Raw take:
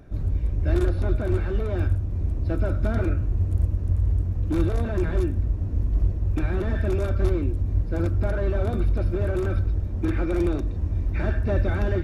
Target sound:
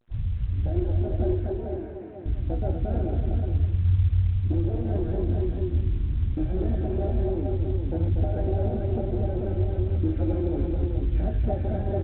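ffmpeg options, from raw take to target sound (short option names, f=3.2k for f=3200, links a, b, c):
-filter_complex "[0:a]afwtdn=0.0562,bandreject=f=50:t=h:w=6,bandreject=f=100:t=h:w=6,bandreject=f=150:t=h:w=6,bandreject=f=200:t=h:w=6,bandreject=f=250:t=h:w=6,bandreject=f=300:t=h:w=6,bandreject=f=350:t=h:w=6,bandreject=f=400:t=h:w=6,bandreject=f=450:t=h:w=6,alimiter=limit=-20dB:level=0:latency=1:release=146,acontrast=37,acrusher=bits=7:mix=0:aa=0.5,flanger=delay=8.2:depth=9.4:regen=49:speed=0.22:shape=triangular,asettb=1/sr,asplit=3[a][b][c];[a]atrim=end=1.334[d];[b]atrim=start=1.33:end=2.26,asetpts=PTS-STARTPTS,afade=t=in:d=0.004:c=qsin,afade=t=out:st=0.926:d=0.004:c=qsin,highpass=320,equalizer=f=320:t=q:w=4:g=3,equalizer=f=500:t=q:w=4:g=-7,equalizer=f=780:t=q:w=4:g=-4,equalizer=f=1.3k:t=q:w=4:g=-5,lowpass=f=2.2k:w=0.5412,lowpass=f=2.2k:w=1.3066[e];[c]atrim=start=2.256[f];[d][e]acrossfade=d=0.004:c1=hsin:c2=qsin[g];[g][f]acrossfade=d=0.004:c1=qsin:c2=hsin,aecho=1:1:240|430|438|644:0.531|0.15|0.562|0.2" -ar 8000 -c:a pcm_alaw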